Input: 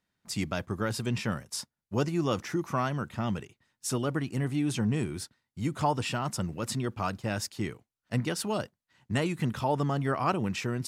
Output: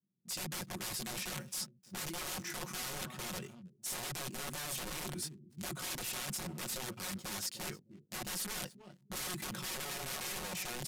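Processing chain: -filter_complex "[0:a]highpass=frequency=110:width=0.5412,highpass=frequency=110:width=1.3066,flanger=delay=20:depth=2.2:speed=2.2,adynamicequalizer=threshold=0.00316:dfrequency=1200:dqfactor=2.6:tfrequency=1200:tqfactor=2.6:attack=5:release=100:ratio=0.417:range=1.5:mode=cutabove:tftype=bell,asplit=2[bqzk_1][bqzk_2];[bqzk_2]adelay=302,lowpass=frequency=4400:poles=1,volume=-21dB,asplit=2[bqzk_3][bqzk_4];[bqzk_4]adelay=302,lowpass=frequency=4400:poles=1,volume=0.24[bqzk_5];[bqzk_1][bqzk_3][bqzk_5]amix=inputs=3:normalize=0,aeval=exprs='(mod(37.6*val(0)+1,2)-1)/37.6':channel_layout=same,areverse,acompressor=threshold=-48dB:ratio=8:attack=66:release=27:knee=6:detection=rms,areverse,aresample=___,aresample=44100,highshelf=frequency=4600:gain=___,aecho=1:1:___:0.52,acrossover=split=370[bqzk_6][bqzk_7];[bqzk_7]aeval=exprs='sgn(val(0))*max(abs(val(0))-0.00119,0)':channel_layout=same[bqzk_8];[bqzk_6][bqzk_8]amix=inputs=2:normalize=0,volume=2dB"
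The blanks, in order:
32000, 8, 5.5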